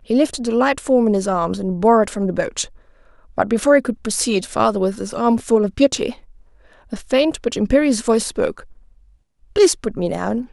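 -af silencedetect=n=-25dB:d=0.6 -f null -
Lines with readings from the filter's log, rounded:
silence_start: 2.64
silence_end: 3.38 | silence_duration: 0.74
silence_start: 6.12
silence_end: 6.93 | silence_duration: 0.81
silence_start: 8.60
silence_end: 9.56 | silence_duration: 0.96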